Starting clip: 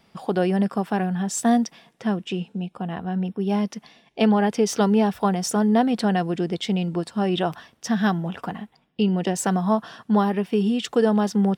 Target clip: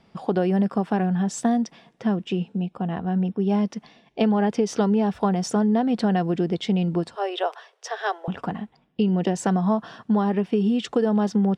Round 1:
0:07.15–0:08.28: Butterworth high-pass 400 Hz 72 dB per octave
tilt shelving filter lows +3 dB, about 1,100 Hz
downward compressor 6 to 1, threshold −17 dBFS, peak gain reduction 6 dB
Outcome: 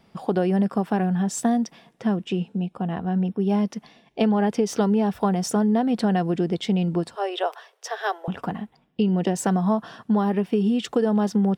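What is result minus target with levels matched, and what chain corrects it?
8,000 Hz band +2.5 dB
0:07.15–0:08.28: Butterworth high-pass 400 Hz 72 dB per octave
tilt shelving filter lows +3 dB, about 1,100 Hz
downward compressor 6 to 1, threshold −17 dBFS, peak gain reduction 6 dB
low-pass filter 7,400 Hz 12 dB per octave

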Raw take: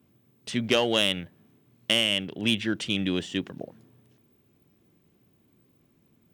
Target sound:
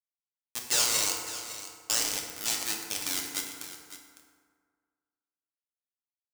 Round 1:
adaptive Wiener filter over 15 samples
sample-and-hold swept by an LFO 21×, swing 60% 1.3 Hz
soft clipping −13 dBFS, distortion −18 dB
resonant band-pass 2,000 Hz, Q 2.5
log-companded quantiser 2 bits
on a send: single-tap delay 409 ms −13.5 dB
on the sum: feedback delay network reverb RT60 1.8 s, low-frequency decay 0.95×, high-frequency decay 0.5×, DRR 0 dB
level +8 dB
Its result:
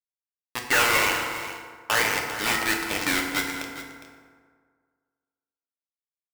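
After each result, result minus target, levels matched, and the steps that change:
2,000 Hz band +10.0 dB; echo 147 ms early
change: resonant band-pass 6,900 Hz, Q 2.5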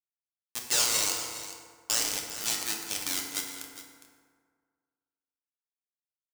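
echo 147 ms early
change: single-tap delay 556 ms −13.5 dB

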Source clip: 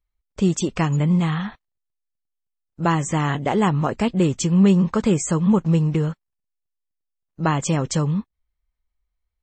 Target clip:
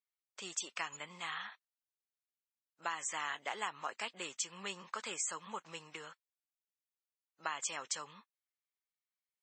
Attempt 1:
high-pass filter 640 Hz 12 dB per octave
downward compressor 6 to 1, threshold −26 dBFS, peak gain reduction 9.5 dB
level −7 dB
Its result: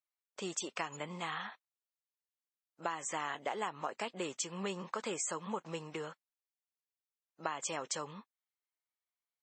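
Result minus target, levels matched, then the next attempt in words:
500 Hz band +7.5 dB
high-pass filter 1,300 Hz 12 dB per octave
downward compressor 6 to 1, threshold −26 dBFS, peak gain reduction 5.5 dB
level −7 dB

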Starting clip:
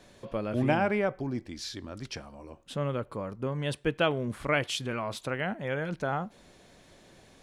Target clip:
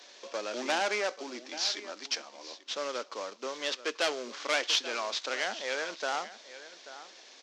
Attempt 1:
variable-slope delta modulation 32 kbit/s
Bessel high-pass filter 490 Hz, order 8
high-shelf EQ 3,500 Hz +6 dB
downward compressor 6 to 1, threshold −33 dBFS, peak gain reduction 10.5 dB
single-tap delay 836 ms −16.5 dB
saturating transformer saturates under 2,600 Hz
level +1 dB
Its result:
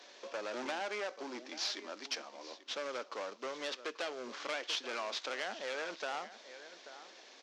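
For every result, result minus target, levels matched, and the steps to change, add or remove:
downward compressor: peak gain reduction +10.5 dB; 8,000 Hz band −2.0 dB
remove: downward compressor 6 to 1, threshold −33 dBFS, peak gain reduction 10.5 dB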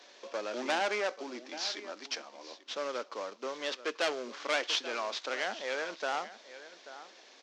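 8,000 Hz band −3.5 dB
change: high-shelf EQ 3,500 Hz +14 dB

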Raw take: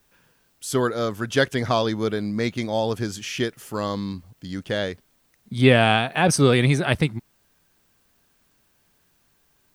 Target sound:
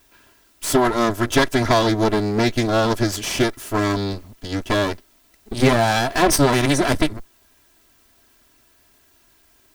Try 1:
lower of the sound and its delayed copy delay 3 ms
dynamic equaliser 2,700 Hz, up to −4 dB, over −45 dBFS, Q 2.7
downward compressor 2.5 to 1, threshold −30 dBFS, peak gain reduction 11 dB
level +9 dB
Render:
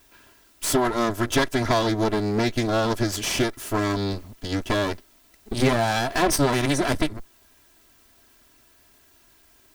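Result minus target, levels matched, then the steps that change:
downward compressor: peak gain reduction +5 dB
change: downward compressor 2.5 to 1, threshold −22 dBFS, peak gain reduction 6 dB

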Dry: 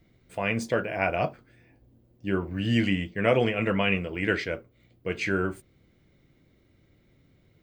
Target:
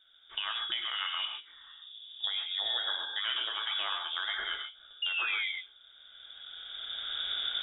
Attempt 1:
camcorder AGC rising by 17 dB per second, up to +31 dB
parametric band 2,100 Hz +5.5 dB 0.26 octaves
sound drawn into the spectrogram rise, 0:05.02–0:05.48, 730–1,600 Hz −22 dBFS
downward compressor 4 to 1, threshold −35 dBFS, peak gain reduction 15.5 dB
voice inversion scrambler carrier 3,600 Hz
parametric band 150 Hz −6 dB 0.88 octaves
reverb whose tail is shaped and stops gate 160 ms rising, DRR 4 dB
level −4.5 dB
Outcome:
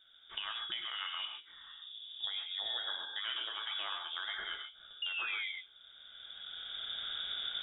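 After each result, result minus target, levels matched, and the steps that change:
125 Hz band +5.5 dB; downward compressor: peak gain reduction +5.5 dB
change: second parametric band 150 Hz −16 dB 0.88 octaves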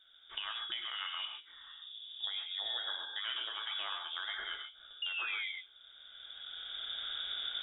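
downward compressor: peak gain reduction +5.5 dB
change: downward compressor 4 to 1, threshold −27.5 dBFS, peak gain reduction 10 dB

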